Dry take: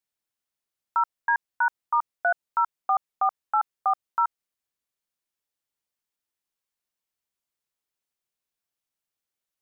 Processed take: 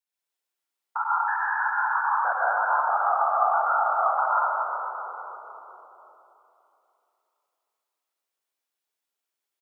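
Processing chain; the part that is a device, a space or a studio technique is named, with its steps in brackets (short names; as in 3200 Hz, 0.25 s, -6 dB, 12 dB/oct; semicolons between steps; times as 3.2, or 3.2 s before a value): 1.03–1.66 Chebyshev band-stop 330–1100 Hz, order 2; whispering ghost (whisperiser; HPF 380 Hz 12 dB/oct; reverb RT60 3.1 s, pre-delay 88 ms, DRR -7.5 dB); frequency-shifting echo 0.242 s, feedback 62%, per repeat -42 Hz, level -13.5 dB; gain -5 dB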